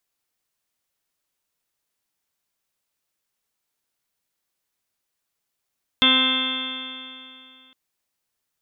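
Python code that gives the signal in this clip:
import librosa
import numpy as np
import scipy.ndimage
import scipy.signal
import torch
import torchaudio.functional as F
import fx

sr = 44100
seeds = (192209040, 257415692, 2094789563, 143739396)

y = fx.additive_stiff(sr, length_s=1.71, hz=258.0, level_db=-21.5, upper_db=(-9, -14, -5, -6, -6.0, -16.5, -2, -19.0, -2, -15.5, 3.5, 6), decay_s=2.6, stiffness=0.00063)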